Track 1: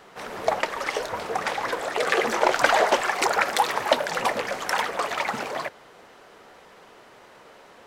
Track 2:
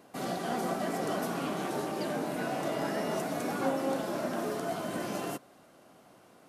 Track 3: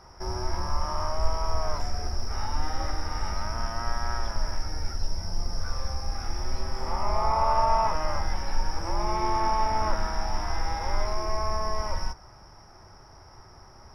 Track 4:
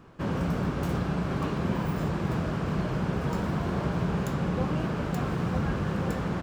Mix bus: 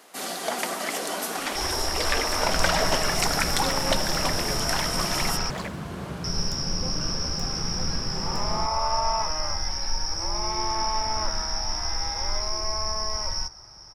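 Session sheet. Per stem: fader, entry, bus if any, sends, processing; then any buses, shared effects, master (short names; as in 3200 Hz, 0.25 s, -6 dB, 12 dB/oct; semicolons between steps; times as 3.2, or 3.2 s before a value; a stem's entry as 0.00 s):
-6.5 dB, 0.00 s, no send, HPF 440 Hz 6 dB/oct
+0.5 dB, 0.00 s, no send, HPF 180 Hz 24 dB/oct; tilt +2 dB/oct
-3.5 dB, 1.35 s, muted 5.5–6.24, no send, bell 5500 Hz +8.5 dB
-6.0 dB, 2.25 s, no send, dry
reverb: off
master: bell 6800 Hz +7 dB 2.7 oct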